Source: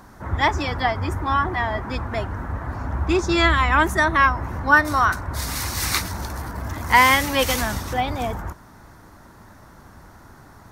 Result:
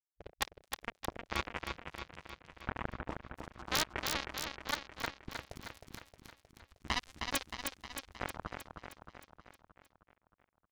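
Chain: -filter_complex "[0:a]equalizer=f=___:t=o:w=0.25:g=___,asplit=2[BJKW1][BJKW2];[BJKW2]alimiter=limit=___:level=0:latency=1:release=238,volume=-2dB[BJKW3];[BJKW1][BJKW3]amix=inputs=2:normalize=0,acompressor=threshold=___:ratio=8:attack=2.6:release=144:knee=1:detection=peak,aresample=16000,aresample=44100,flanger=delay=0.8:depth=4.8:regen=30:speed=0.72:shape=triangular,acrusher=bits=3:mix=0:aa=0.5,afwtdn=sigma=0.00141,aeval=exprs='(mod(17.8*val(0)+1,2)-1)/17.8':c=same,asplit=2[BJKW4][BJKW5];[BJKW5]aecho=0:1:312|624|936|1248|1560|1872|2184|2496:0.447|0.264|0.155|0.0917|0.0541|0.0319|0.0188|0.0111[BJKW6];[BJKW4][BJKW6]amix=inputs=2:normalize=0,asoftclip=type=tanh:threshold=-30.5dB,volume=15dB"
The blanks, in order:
70, 5.5, -12.5dB, -28dB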